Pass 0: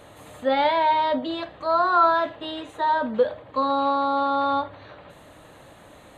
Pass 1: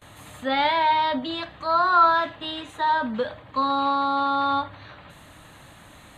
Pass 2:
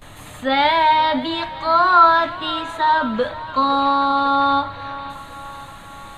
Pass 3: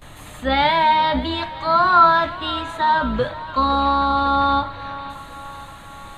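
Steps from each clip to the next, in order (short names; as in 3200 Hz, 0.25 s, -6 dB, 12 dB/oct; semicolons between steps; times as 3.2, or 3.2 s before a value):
gate with hold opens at -40 dBFS; bell 490 Hz -11 dB 1.4 oct; gain +4 dB
added noise brown -53 dBFS; thinning echo 0.526 s, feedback 64%, high-pass 300 Hz, level -16 dB; gain +5.5 dB
octaver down 2 oct, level -2 dB; gain -1 dB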